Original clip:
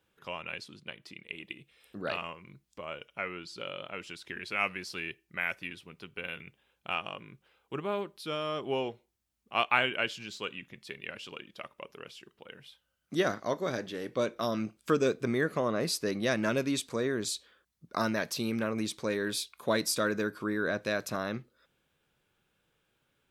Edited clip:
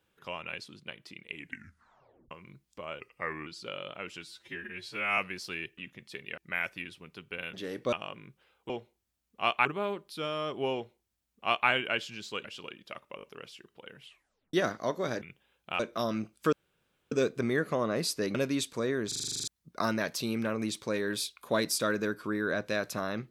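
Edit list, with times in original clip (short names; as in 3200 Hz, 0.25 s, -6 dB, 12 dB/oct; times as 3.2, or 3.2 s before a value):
1.32 tape stop 0.99 s
3–3.4 speed 86%
4.15–4.63 stretch 2×
6.39–6.97 swap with 13.84–14.23
8.82–9.78 copy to 7.74
10.53–11.13 move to 5.23
11.85 stutter 0.02 s, 4 plays
12.63 tape stop 0.53 s
14.96 insert room tone 0.59 s
16.19–16.51 cut
17.24 stutter in place 0.04 s, 10 plays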